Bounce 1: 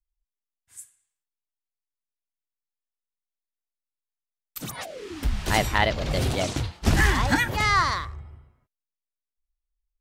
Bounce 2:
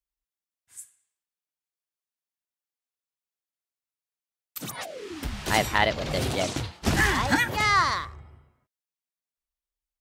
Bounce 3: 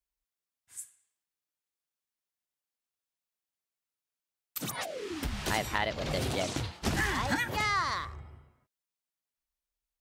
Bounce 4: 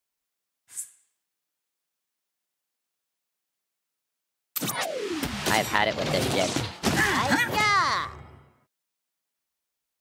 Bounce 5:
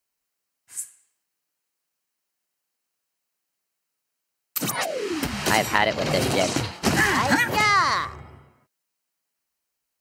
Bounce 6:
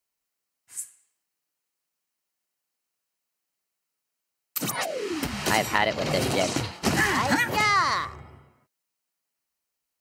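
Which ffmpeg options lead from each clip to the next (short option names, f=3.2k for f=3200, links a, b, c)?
-af "highpass=f=140:p=1"
-af "acompressor=threshold=-30dB:ratio=2.5"
-af "highpass=130,volume=7.5dB"
-af "bandreject=f=3.5k:w=8.6,volume=3dB"
-af "bandreject=f=1.6k:w=28,volume=-2.5dB"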